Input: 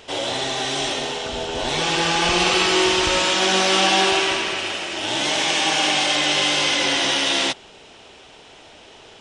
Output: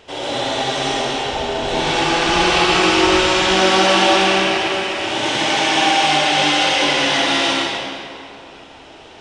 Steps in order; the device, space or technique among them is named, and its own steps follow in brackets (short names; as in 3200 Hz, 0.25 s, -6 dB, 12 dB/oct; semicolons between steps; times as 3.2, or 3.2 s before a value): swimming-pool hall (reverb RT60 2.4 s, pre-delay 59 ms, DRR -5.5 dB; high shelf 4100 Hz -7 dB); gain -1 dB